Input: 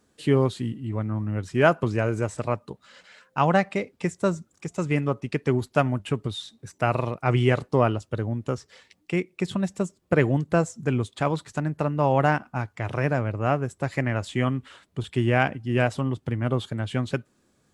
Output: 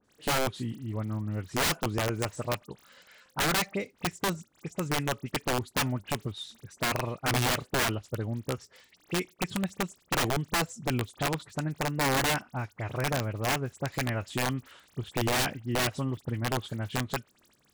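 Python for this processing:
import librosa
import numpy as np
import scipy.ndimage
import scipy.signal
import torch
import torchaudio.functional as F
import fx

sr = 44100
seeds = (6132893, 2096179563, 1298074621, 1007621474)

y = fx.dmg_crackle(x, sr, seeds[0], per_s=43.0, level_db=-32.0)
y = fx.dispersion(y, sr, late='highs', ms=47.0, hz=2900.0)
y = (np.mod(10.0 ** (16.0 / 20.0) * y + 1.0, 2.0) - 1.0) / 10.0 ** (16.0 / 20.0)
y = y * 10.0 ** (-5.0 / 20.0)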